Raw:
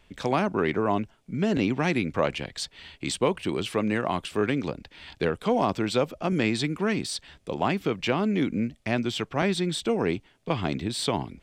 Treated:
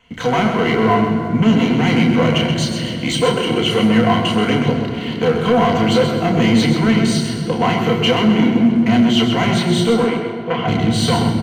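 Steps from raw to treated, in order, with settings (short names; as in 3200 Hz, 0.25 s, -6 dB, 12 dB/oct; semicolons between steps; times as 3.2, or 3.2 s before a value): soft clip -24 dBFS, distortion -9 dB; ripple EQ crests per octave 1.9, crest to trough 10 dB; reverb RT60 3.2 s, pre-delay 3 ms, DRR 1.5 dB; sample leveller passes 1; 10.04–10.68 tone controls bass -12 dB, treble -13 dB; feedback echo 0.13 s, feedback 36%, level -8 dB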